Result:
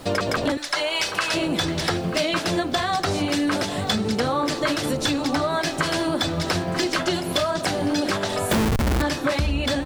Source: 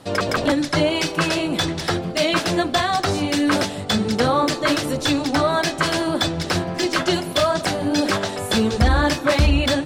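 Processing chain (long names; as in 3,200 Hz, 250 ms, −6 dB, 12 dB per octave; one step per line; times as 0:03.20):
0:00.57–0:01.34: high-pass filter 830 Hz 12 dB per octave
single-tap delay 938 ms −16 dB
0:08.51–0:09.02: comparator with hysteresis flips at −18 dBFS
background noise pink −54 dBFS
downward compressor 5 to 1, threshold −25 dBFS, peak gain reduction 12.5 dB
level +4.5 dB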